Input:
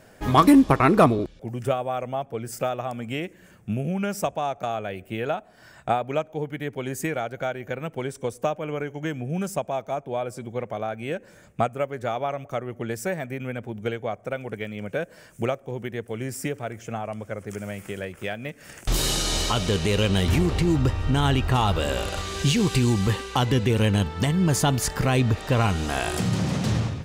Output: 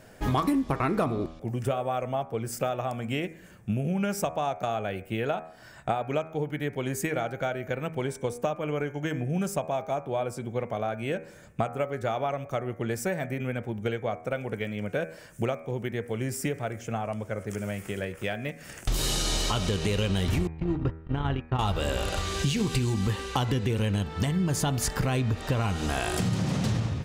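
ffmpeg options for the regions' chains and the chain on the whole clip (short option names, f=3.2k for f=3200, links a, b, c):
-filter_complex "[0:a]asettb=1/sr,asplit=3[a][b][c];[a]atrim=end=20.474[d];[b]atrim=start=20.47:end=21.59,asetpts=PTS-STARTPTS,afade=t=in:d=0.004:c=qsin,afade=t=out:st=1.116:d=0.004:c=qsin,agate=range=-32dB:threshold=-20dB:ratio=16:release=100:detection=peak,lowpass=2.3k[e];[c]atrim=start=21.586[f];[d][e]acrossfade=d=0.004:c1=hsin:c2=qsin[g];[g][f]acrossfade=d=0.004:c1=qsin:c2=hsin,lowshelf=f=130:g=3,bandreject=f=80.27:t=h:w=4,bandreject=f=160.54:t=h:w=4,bandreject=f=240.81:t=h:w=4,bandreject=f=321.08:t=h:w=4,bandreject=f=401.35:t=h:w=4,bandreject=f=481.62:t=h:w=4,bandreject=f=561.89:t=h:w=4,bandreject=f=642.16:t=h:w=4,bandreject=f=722.43:t=h:w=4,bandreject=f=802.7:t=h:w=4,bandreject=f=882.97:t=h:w=4,bandreject=f=963.24:t=h:w=4,bandreject=f=1.04351k:t=h:w=4,bandreject=f=1.12378k:t=h:w=4,bandreject=f=1.20405k:t=h:w=4,bandreject=f=1.28432k:t=h:w=4,bandreject=f=1.36459k:t=h:w=4,bandreject=f=1.44486k:t=h:w=4,bandreject=f=1.52513k:t=h:w=4,bandreject=f=1.6054k:t=h:w=4,bandreject=f=1.68567k:t=h:w=4,bandreject=f=1.76594k:t=h:w=4,bandreject=f=1.84621k:t=h:w=4,bandreject=f=1.92648k:t=h:w=4,bandreject=f=2.00675k:t=h:w=4,bandreject=f=2.08702k:t=h:w=4,bandreject=f=2.16729k:t=h:w=4,bandreject=f=2.24756k:t=h:w=4,bandreject=f=2.32783k:t=h:w=4,bandreject=f=2.4081k:t=h:w=4,bandreject=f=2.48837k:t=h:w=4,acompressor=threshold=-23dB:ratio=6"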